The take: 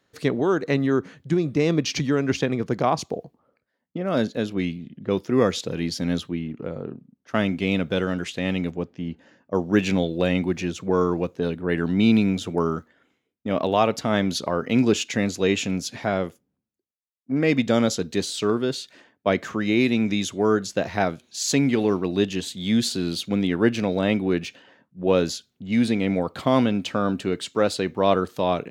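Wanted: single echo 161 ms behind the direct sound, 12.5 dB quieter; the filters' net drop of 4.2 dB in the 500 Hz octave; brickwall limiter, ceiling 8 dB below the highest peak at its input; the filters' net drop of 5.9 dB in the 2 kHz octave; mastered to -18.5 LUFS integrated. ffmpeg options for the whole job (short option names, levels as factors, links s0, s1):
-af "equalizer=f=500:t=o:g=-5,equalizer=f=2000:t=o:g=-7.5,alimiter=limit=0.158:level=0:latency=1,aecho=1:1:161:0.237,volume=2.99"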